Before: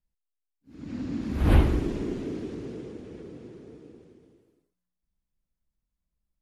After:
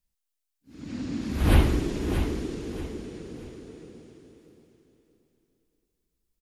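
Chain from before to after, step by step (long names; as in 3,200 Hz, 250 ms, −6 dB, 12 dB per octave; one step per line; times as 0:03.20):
high-shelf EQ 2,700 Hz +9.5 dB
repeating echo 629 ms, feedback 29%, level −9 dB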